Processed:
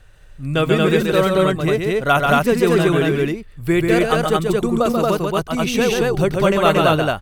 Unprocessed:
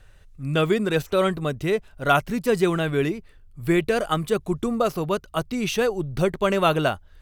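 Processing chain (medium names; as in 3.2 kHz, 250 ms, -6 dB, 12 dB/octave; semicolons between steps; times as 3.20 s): loudspeakers at several distances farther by 47 m -4 dB, 78 m -1 dB; trim +3 dB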